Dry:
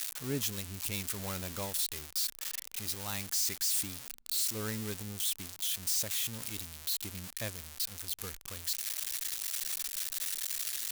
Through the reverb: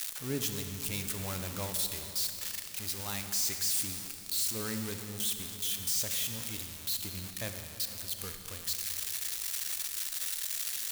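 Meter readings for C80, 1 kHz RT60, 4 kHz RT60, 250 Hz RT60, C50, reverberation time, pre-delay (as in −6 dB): 7.5 dB, 2.7 s, 2.2 s, 3.9 s, 6.5 dB, 3.0 s, 29 ms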